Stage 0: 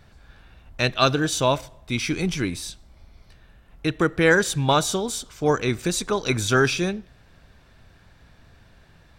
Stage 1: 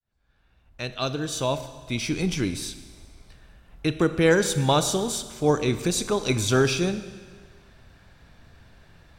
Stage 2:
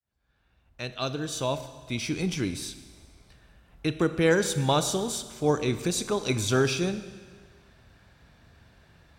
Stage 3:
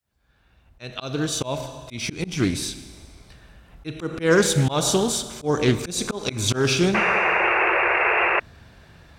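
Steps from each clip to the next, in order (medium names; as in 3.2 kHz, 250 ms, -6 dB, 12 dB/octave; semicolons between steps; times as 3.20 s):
fade-in on the opening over 2.43 s; dynamic bell 1.6 kHz, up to -7 dB, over -38 dBFS, Q 1.2; Schroeder reverb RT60 1.6 s, combs from 27 ms, DRR 11.5 dB
high-pass 43 Hz; trim -3 dB
slow attack 189 ms; painted sound noise, 6.94–8.40 s, 330–2800 Hz -28 dBFS; loudspeaker Doppler distortion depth 0.2 ms; trim +8 dB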